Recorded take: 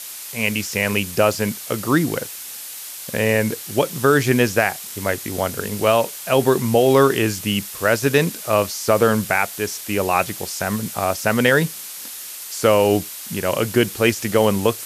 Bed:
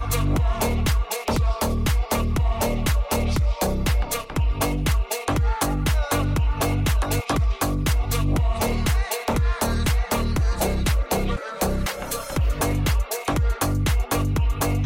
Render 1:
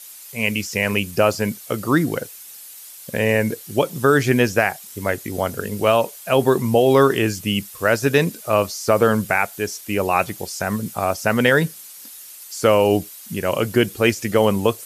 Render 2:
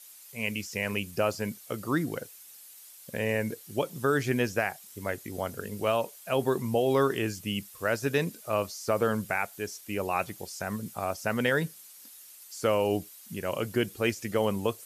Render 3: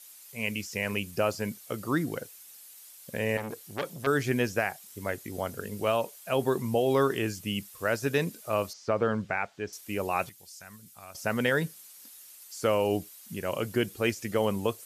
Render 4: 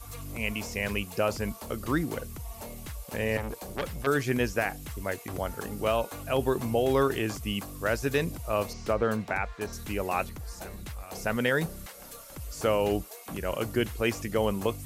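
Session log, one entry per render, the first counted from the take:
denoiser 10 dB, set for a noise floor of -34 dBFS
gain -10.5 dB
3.37–4.07 core saturation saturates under 1900 Hz; 8.73–9.73 air absorption 150 m; 10.29–11.15 passive tone stack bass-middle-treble 5-5-5
add bed -19 dB

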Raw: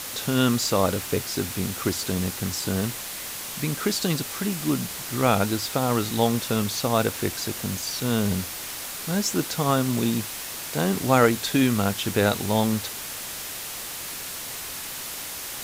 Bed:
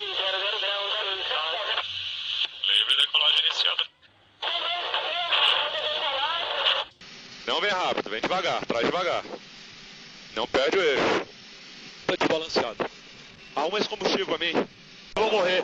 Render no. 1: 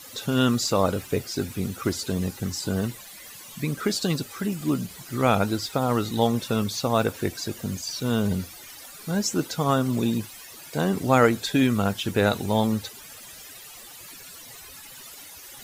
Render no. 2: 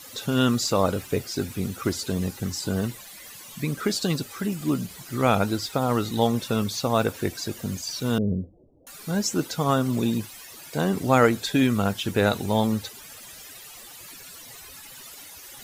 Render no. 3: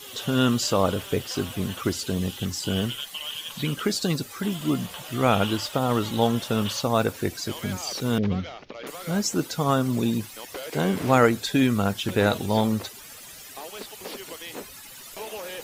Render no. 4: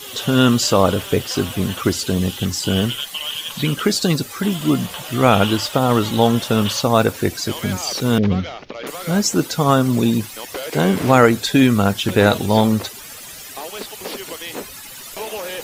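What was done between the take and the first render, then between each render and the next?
denoiser 15 dB, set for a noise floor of -35 dBFS
8.18–8.87 steep low-pass 560 Hz
add bed -13.5 dB
gain +7.5 dB; limiter -1 dBFS, peak gain reduction 2 dB

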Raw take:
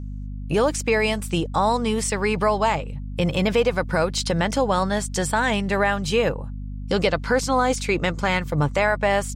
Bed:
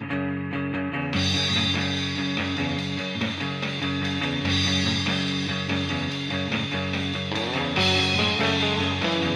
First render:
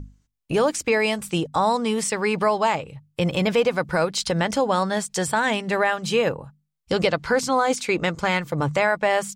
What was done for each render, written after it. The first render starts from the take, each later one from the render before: notches 50/100/150/200/250 Hz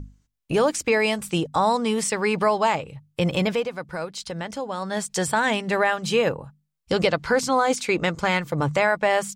3.4–5.07 dip -9 dB, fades 0.28 s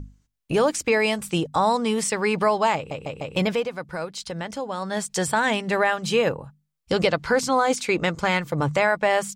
2.76 stutter in place 0.15 s, 4 plays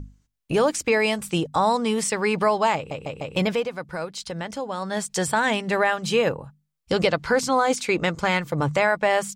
nothing audible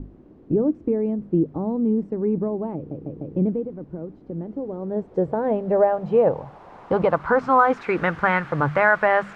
requantised 6-bit, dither triangular; low-pass sweep 310 Hz -> 1500 Hz, 4.23–7.94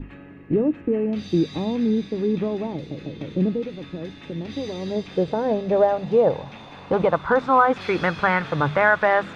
add bed -17 dB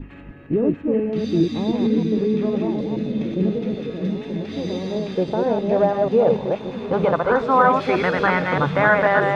reverse delay 0.156 s, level -3 dB; on a send: delay with a stepping band-pass 0.638 s, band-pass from 190 Hz, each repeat 0.7 oct, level -4 dB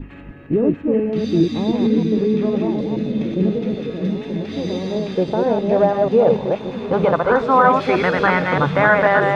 gain +2.5 dB; limiter -2 dBFS, peak gain reduction 1.5 dB

